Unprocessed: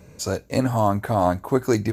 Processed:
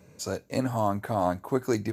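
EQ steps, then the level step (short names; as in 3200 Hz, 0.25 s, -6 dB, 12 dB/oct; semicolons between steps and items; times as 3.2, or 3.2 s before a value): HPF 100 Hz; -6.0 dB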